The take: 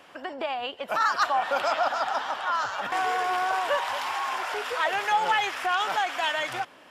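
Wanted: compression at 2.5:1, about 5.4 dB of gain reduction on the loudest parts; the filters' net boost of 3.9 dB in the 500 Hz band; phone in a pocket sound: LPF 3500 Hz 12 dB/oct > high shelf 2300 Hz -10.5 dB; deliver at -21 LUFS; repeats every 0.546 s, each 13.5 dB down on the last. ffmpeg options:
-af "equalizer=f=500:t=o:g=6,acompressor=threshold=-26dB:ratio=2.5,lowpass=3.5k,highshelf=f=2.3k:g=-10.5,aecho=1:1:546|1092:0.211|0.0444,volume=9.5dB"

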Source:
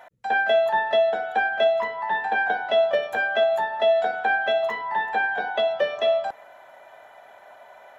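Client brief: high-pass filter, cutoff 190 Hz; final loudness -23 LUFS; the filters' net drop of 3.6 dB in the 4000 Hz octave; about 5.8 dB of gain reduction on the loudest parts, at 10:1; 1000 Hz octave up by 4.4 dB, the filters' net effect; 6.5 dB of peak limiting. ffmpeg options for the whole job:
-af "highpass=190,equalizer=f=1k:t=o:g=6.5,equalizer=f=4k:t=o:g=-5,acompressor=threshold=-19dB:ratio=10,volume=2dB,alimiter=limit=-15.5dB:level=0:latency=1"

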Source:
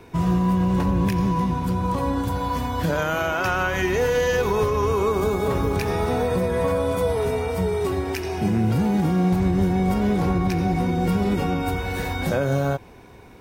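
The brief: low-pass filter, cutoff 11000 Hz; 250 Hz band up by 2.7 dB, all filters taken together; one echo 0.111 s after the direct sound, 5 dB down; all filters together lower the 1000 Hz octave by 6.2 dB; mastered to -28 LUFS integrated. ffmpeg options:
-af "lowpass=11k,equalizer=f=250:t=o:g=4.5,equalizer=f=1k:t=o:g=-8.5,aecho=1:1:111:0.562,volume=-7.5dB"

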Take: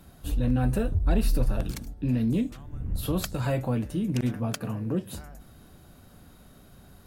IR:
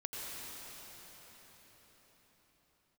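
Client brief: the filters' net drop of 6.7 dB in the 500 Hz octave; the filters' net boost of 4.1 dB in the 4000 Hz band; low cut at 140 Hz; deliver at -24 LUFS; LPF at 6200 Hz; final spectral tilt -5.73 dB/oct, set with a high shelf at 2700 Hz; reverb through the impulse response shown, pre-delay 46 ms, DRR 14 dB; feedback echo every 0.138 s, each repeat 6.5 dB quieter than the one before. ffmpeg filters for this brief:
-filter_complex "[0:a]highpass=140,lowpass=6.2k,equalizer=f=500:t=o:g=-8.5,highshelf=f=2.7k:g=3,equalizer=f=4k:t=o:g=3.5,aecho=1:1:138|276|414|552|690|828:0.473|0.222|0.105|0.0491|0.0231|0.0109,asplit=2[a][b];[1:a]atrim=start_sample=2205,adelay=46[c];[b][c]afir=irnorm=-1:irlink=0,volume=-16dB[d];[a][d]amix=inputs=2:normalize=0,volume=7dB"

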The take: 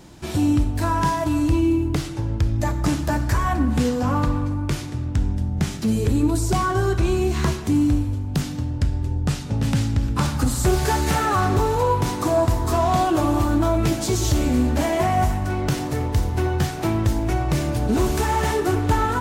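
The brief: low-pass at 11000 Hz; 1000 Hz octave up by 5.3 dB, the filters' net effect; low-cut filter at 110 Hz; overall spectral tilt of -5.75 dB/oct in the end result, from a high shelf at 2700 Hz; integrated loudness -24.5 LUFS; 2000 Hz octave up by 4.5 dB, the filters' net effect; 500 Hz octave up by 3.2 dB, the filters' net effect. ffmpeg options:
-af "highpass=110,lowpass=11k,equalizer=f=500:t=o:g=3,equalizer=f=1k:t=o:g=5,equalizer=f=2k:t=o:g=5.5,highshelf=f=2.7k:g=-4.5,volume=-4dB"

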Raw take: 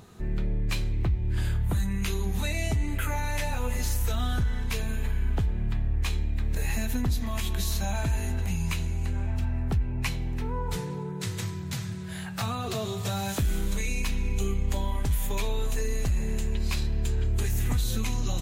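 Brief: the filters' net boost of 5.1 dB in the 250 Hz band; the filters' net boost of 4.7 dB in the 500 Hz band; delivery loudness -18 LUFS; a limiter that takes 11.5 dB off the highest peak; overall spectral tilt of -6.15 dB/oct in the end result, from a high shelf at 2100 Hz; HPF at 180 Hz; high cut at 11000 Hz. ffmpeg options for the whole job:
-af "highpass=180,lowpass=11k,equalizer=f=250:t=o:g=8,equalizer=f=500:t=o:g=4,highshelf=f=2.1k:g=-8.5,volume=17.5dB,alimiter=limit=-9dB:level=0:latency=1"

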